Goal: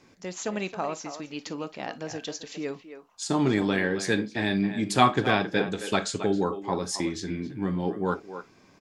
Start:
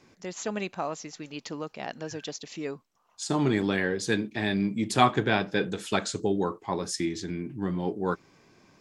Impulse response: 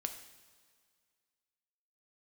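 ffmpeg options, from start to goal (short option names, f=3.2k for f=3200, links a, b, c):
-filter_complex "[0:a]asplit=2[a][b];[b]adelay=270,highpass=300,lowpass=3.4k,asoftclip=type=hard:threshold=-13.5dB,volume=-10dB[c];[a][c]amix=inputs=2:normalize=0,asplit=2[d][e];[1:a]atrim=start_sample=2205,atrim=end_sample=3087,asetrate=48510,aresample=44100[f];[e][f]afir=irnorm=-1:irlink=0,volume=5dB[g];[d][g]amix=inputs=2:normalize=0,volume=-6.5dB"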